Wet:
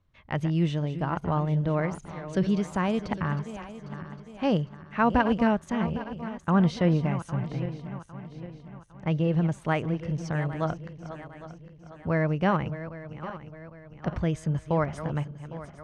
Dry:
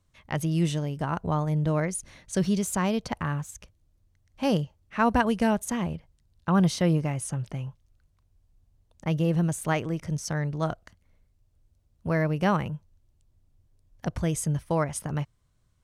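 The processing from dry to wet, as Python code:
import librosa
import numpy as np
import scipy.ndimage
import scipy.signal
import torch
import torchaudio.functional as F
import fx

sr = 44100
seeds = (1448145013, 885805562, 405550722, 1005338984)

y = fx.reverse_delay_fb(x, sr, ms=403, feedback_pct=66, wet_db=-12.0)
y = scipy.signal.sosfilt(scipy.signal.butter(2, 3200.0, 'lowpass', fs=sr, output='sos'), y)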